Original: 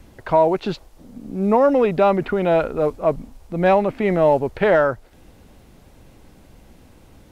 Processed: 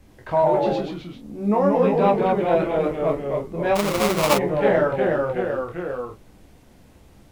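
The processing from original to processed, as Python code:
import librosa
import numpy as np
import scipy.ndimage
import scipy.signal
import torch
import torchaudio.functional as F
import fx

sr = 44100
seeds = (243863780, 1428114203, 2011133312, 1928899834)

p1 = fx.notch(x, sr, hz=1400.0, q=20.0)
p2 = p1 + fx.room_early_taps(p1, sr, ms=(14, 24, 44), db=(-6.0, -4.5, -8.5), dry=0)
p3 = fx.echo_pitch(p2, sr, ms=85, semitones=-1, count=3, db_per_echo=-3.0)
p4 = fx.sample_hold(p3, sr, seeds[0], rate_hz=1700.0, jitter_pct=20, at=(3.75, 4.37), fade=0.02)
y = F.gain(torch.from_numpy(p4), -7.0).numpy()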